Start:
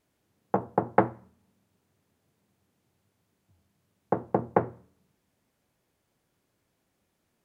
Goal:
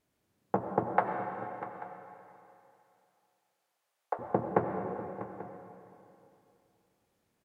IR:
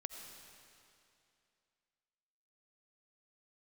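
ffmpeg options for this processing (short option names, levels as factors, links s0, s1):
-filter_complex "[0:a]asettb=1/sr,asplit=3[s0][s1][s2];[s0]atrim=end=0.964[s3];[s1]atrim=start=0.96:end=4.19,asetpts=PTS-STARTPTS,afade=t=in:d=0.004:c=qsin,afade=t=out:st=3.226:d=0.004:c=qsin,highpass=f=580:w=0.5412,highpass=f=580:w=1.3066[s4];[s2]atrim=start=4.186[s5];[s3][s4]acrossfade=d=0.004:c1=hsin:c2=qsin[s6];[s6][s5]acrossfade=d=0.004:c1=qsin:c2=hsin,aecho=1:1:645|838:0.188|0.112[s7];[1:a]atrim=start_sample=2205,asetrate=40572,aresample=44100[s8];[s7][s8]afir=irnorm=-1:irlink=0"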